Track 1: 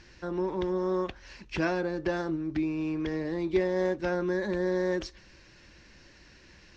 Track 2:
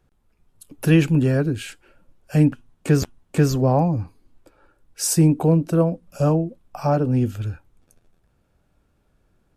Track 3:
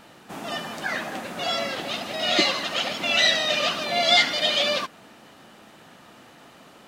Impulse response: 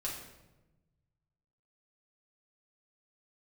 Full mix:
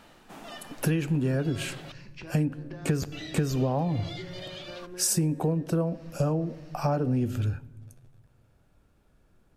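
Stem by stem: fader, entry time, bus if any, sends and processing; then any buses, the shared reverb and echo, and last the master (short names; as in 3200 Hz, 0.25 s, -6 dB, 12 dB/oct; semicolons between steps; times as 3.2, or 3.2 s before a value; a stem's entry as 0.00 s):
-7.5 dB, 0.65 s, send -6 dB, compressor 6:1, threshold -37 dBFS, peak gain reduction 15 dB
-0.5 dB, 0.00 s, send -17 dB, dry
-4.5 dB, 0.00 s, muted 1.92–3.12, no send, compressor 12:1, threshold -25 dBFS, peak gain reduction 12.5 dB; auto duck -10 dB, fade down 0.80 s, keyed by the second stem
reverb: on, RT60 1.1 s, pre-delay 4 ms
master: compressor 16:1, threshold -22 dBFS, peak gain reduction 13 dB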